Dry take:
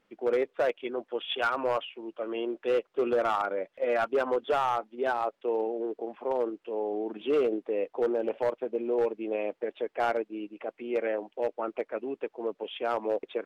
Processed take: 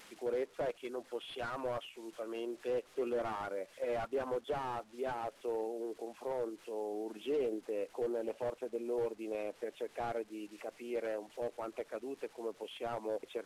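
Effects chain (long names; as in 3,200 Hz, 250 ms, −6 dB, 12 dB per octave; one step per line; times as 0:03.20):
linear delta modulator 64 kbit/s, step −48.5 dBFS
one half of a high-frequency compander encoder only
level −8 dB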